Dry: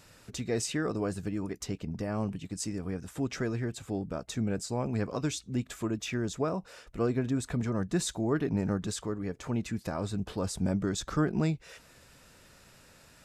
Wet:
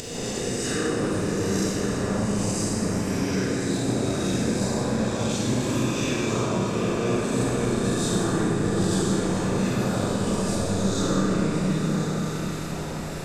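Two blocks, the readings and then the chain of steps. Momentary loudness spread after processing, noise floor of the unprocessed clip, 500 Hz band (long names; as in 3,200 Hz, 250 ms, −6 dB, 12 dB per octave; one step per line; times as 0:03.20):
3 LU, −58 dBFS, +8.5 dB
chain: peak hold with a rise ahead of every peak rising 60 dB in 1.64 s
wind on the microphone 570 Hz −43 dBFS
upward compression, threshold −36 dBFS
brickwall limiter −23 dBFS, peak gain reduction 10.5 dB
echo whose low-pass opens from repeat to repeat 262 ms, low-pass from 200 Hz, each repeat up 2 octaves, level 0 dB
four-comb reverb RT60 1.8 s, combs from 32 ms, DRR −4 dB
one half of a high-frequency compander encoder only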